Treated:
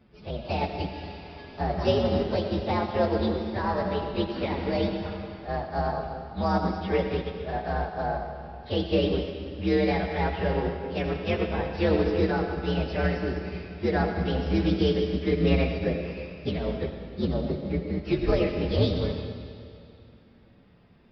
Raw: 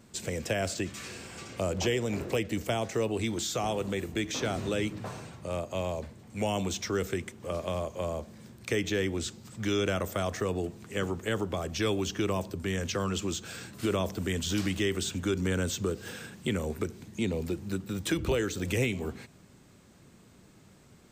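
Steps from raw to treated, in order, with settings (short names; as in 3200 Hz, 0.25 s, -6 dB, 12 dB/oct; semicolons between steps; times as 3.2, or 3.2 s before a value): inharmonic rescaling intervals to 124%; bell 4200 Hz -7.5 dB 0.36 oct; downsampling 11025 Hz; reverb RT60 2.7 s, pre-delay 45 ms, DRR 1.5 dB; upward expander 1.5:1, over -39 dBFS; gain +8 dB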